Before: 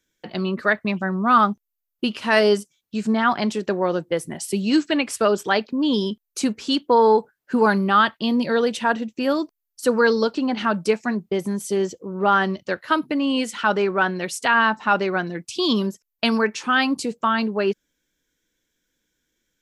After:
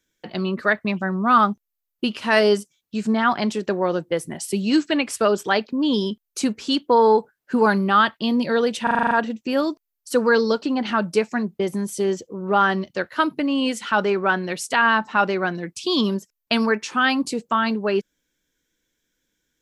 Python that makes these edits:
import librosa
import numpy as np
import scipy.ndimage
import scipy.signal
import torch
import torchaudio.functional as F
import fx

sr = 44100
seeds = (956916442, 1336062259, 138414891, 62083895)

y = fx.edit(x, sr, fx.stutter(start_s=8.83, slice_s=0.04, count=8), tone=tone)